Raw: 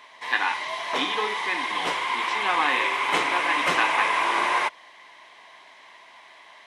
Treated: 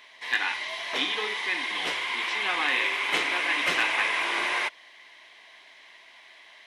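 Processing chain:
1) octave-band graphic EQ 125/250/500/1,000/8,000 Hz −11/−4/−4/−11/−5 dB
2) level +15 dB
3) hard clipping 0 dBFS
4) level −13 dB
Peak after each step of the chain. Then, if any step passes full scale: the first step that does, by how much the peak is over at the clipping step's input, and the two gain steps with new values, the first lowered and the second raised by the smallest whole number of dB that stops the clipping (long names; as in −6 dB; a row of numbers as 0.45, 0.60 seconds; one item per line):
−10.5, +4.5, 0.0, −13.0 dBFS
step 2, 4.5 dB
step 2 +10 dB, step 4 −8 dB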